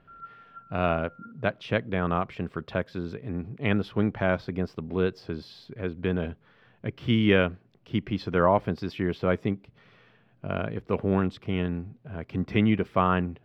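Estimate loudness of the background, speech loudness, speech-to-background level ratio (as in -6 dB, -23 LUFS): -48.0 LUFS, -28.0 LUFS, 20.0 dB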